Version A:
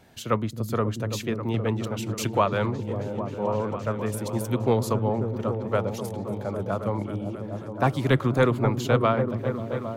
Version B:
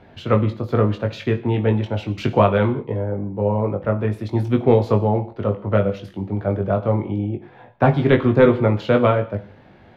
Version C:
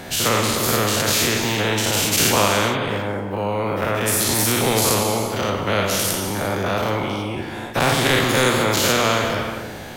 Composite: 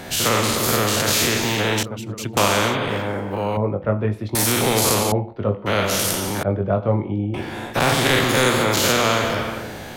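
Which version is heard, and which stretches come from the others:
C
0:01.83–0:02.37: punch in from A
0:03.57–0:04.35: punch in from B
0:05.12–0:05.66: punch in from B
0:06.43–0:07.34: punch in from B

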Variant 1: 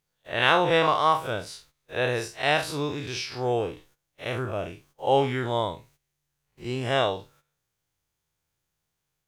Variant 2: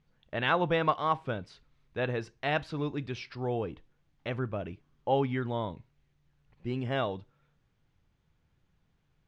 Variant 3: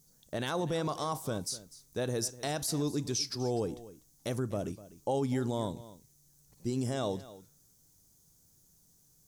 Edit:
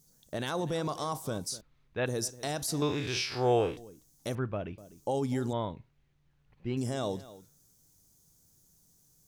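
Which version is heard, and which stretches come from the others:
3
0:01.61–0:02.06: punch in from 2
0:02.82–0:03.77: punch in from 1
0:04.35–0:04.78: punch in from 2
0:05.53–0:06.77: punch in from 2

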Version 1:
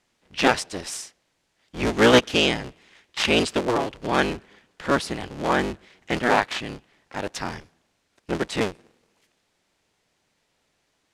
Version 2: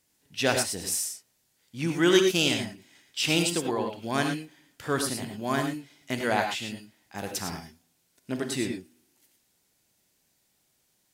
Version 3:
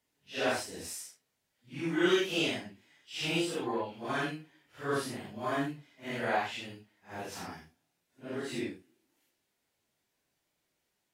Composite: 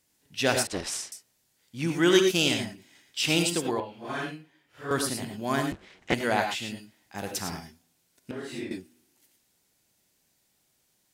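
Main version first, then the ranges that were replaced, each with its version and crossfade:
2
0:00.67–0:01.12: punch in from 1
0:03.80–0:04.91: punch in from 3
0:05.72–0:06.14: punch in from 1
0:08.31–0:08.71: punch in from 3

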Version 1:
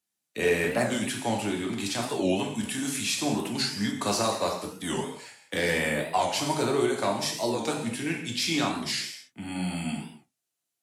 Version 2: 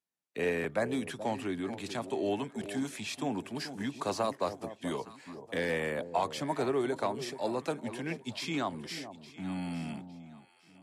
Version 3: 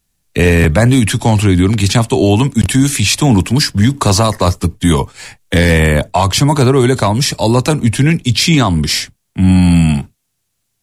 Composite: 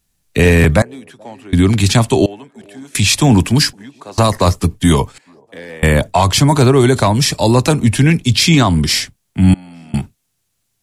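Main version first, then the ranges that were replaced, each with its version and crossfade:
3
0:00.82–0:01.53: punch in from 2
0:02.26–0:02.95: punch in from 2
0:03.73–0:04.18: punch in from 2
0:05.18–0:05.83: punch in from 2
0:09.54–0:09.94: punch in from 2
not used: 1

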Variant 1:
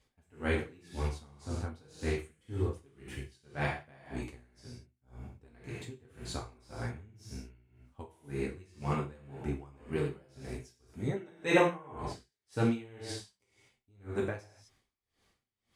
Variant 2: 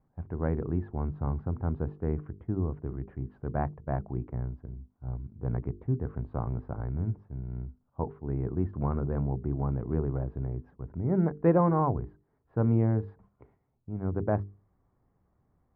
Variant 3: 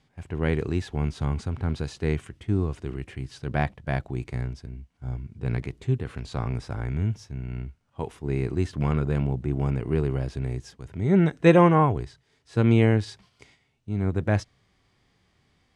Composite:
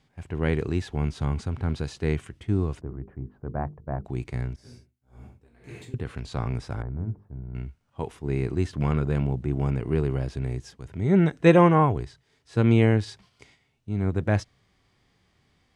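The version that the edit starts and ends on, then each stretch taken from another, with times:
3
0:02.81–0:04.05: punch in from 2
0:04.56–0:05.94: punch in from 1
0:06.82–0:07.55: punch in from 2

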